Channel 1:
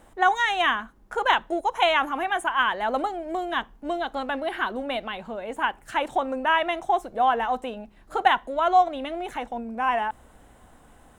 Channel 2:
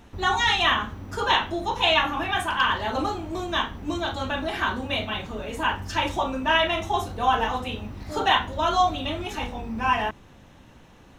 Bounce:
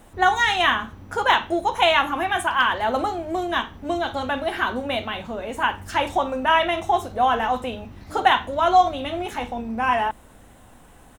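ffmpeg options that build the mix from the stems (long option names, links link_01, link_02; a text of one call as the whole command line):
ffmpeg -i stem1.wav -i stem2.wav -filter_complex "[0:a]highshelf=frequency=9300:gain=8,volume=2dB[link_01];[1:a]adelay=3.4,volume=-4.5dB[link_02];[link_01][link_02]amix=inputs=2:normalize=0" out.wav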